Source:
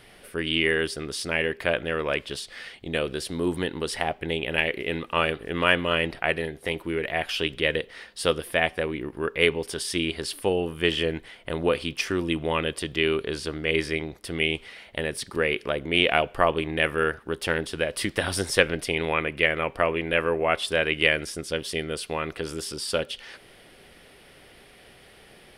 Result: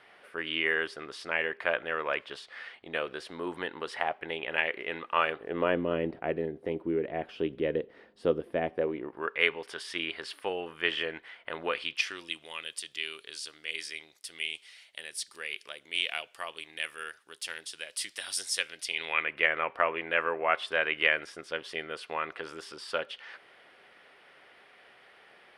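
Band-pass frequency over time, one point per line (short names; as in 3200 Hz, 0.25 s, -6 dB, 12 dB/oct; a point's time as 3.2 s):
band-pass, Q 0.97
5.26 s 1200 Hz
5.79 s 320 Hz
8.69 s 320 Hz
9.37 s 1500 Hz
11.63 s 1500 Hz
12.49 s 6900 Hz
18.76 s 6900 Hz
19.41 s 1300 Hz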